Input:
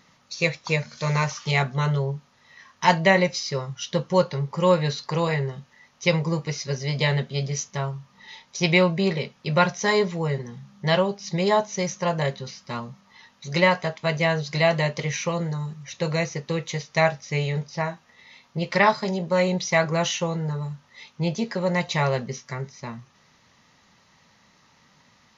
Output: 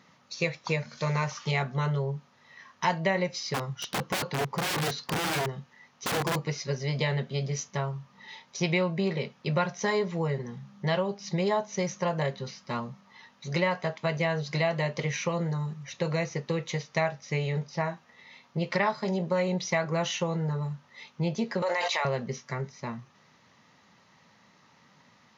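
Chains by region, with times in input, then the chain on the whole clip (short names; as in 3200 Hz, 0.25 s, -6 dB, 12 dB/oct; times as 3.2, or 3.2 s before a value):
3.54–6.36 notch 590 Hz, Q 13 + wrapped overs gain 21 dB
21.62–22.05 Bessel high-pass 740 Hz, order 4 + fast leveller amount 100%
whole clip: high shelf 3600 Hz -7 dB; compressor 3:1, threshold -25 dBFS; HPF 110 Hz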